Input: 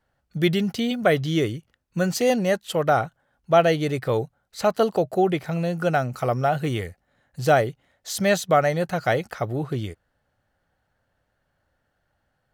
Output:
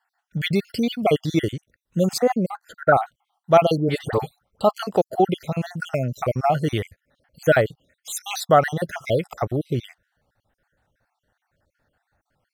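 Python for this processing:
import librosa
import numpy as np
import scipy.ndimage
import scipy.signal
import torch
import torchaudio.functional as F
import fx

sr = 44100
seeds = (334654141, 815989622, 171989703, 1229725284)

y = fx.spec_dropout(x, sr, seeds[0], share_pct=52)
y = fx.high_shelf_res(y, sr, hz=2000.0, db=-12.5, q=3.0, at=(2.18, 2.94))
y = fx.dispersion(y, sr, late='highs', ms=111.0, hz=1200.0, at=(3.77, 4.61))
y = y * 10.0 ** (3.5 / 20.0)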